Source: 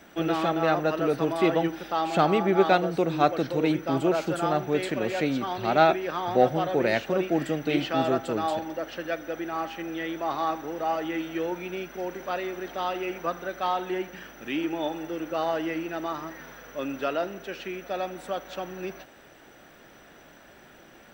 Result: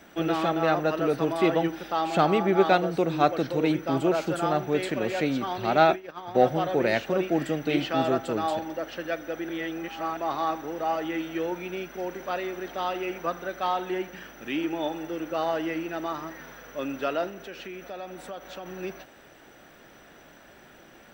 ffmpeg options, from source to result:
-filter_complex "[0:a]asplit=3[s0][s1][s2];[s0]afade=t=out:st=5.94:d=0.02[s3];[s1]agate=range=0.0224:threshold=0.0708:ratio=3:release=100:detection=peak,afade=t=in:st=5.94:d=0.02,afade=t=out:st=6.34:d=0.02[s4];[s2]afade=t=in:st=6.34:d=0.02[s5];[s3][s4][s5]amix=inputs=3:normalize=0,asettb=1/sr,asplit=3[s6][s7][s8];[s6]atrim=end=17.294[s9];[s7]atrim=start=17.29:end=18.66,asetpts=PTS-STARTPTS,afade=t=in:d=0.004:c=qsin,afade=t=out:st=1.366:d=0.004:c=qsin,acompressor=threshold=0.0141:ratio=2.5:attack=3.2:release=140:knee=1:detection=peak[s10];[s8]atrim=start=18.656[s11];[s9][s10]acrossfade=d=0.004:c1=hsin:c2=qsin[s12];[s12][s11]acrossfade=d=0.004:c1=qsin:c2=hsin,asplit=3[s13][s14][s15];[s13]atrim=end=9.492[s16];[s14]atrim=start=9.488:end=10.172,asetpts=PTS-STARTPTS,areverse[s17];[s15]atrim=start=10.168[s18];[s16][s17]acrossfade=d=0.004:c1=hsin:c2=hsin[s19];[s19][s18]acrossfade=d=0.004:c1=hsin:c2=hsin"

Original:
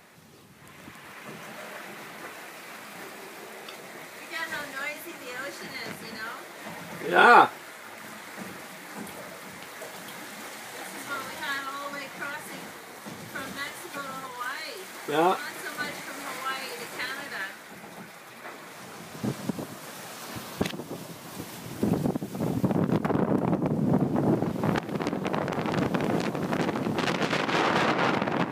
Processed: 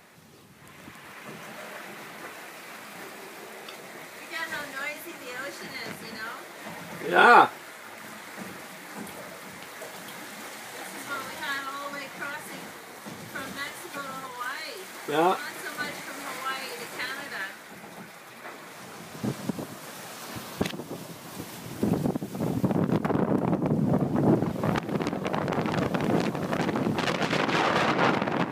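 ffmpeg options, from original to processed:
-filter_complex "[0:a]asettb=1/sr,asplit=3[s0][s1][s2];[s0]atrim=end=23.684[s3];[s1]atrim=start=23.68:end=28.13,asetpts=PTS-STARTPTS,afade=t=in:d=0.004:c=qsin,afade=t=out:st=4.446:d=0.004:c=qsin,aphaser=in_gain=1:out_gain=1:delay=1.8:decay=0.26:speed=1.6:type=sinusoidal[s4];[s2]atrim=start=28.126[s5];[s3][s4]acrossfade=d=0.004:c1=hsin:c2=qsin[s6];[s6][s5]acrossfade=d=0.004:c1=qsin:c2=hsin"

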